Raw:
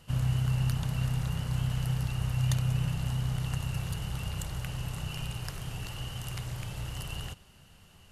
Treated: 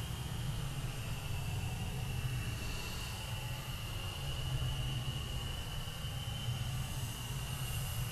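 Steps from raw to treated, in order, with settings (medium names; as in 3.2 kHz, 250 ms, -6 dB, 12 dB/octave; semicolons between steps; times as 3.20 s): saturation -17.5 dBFS, distortion -26 dB; Paulstretch 12×, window 0.10 s, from 5.63 s; trim -1.5 dB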